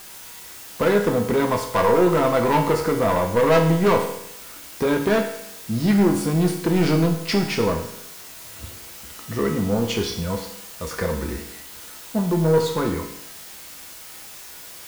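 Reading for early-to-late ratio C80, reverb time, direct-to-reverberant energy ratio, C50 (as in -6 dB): 9.5 dB, 0.80 s, 2.0 dB, 7.5 dB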